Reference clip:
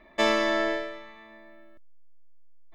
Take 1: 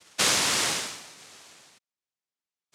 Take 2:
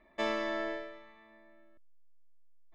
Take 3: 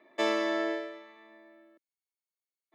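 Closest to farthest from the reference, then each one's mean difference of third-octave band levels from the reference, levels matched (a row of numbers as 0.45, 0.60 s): 2, 3, 1; 1.0, 2.5, 10.5 dB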